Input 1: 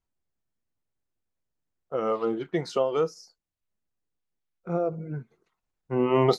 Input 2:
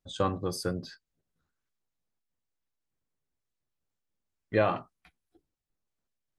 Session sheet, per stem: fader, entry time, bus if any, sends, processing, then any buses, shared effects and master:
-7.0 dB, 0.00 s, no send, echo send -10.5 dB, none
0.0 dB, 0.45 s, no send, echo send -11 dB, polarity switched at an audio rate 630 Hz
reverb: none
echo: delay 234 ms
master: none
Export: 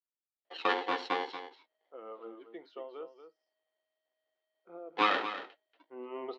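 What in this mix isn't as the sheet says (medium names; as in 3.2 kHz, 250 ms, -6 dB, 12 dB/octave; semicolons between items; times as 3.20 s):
stem 1 -7.0 dB -> -18.5 dB; master: extra elliptic band-pass 290–3700 Hz, stop band 50 dB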